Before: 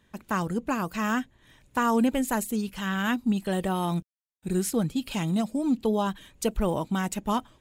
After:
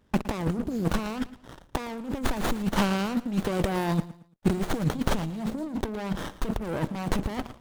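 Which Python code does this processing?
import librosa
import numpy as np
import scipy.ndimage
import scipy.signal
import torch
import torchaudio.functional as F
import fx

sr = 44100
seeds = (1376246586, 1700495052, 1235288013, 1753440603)

y = fx.spec_box(x, sr, start_s=0.5, length_s=0.35, low_hz=530.0, high_hz=3200.0, gain_db=-30)
y = fx.low_shelf(y, sr, hz=200.0, db=-11.0, at=(2.69, 4.93))
y = fx.leveller(y, sr, passes=3)
y = fx.over_compress(y, sr, threshold_db=-25.0, ratio=-0.5)
y = fx.echo_feedback(y, sr, ms=113, feedback_pct=30, wet_db=-16.0)
y = fx.running_max(y, sr, window=17)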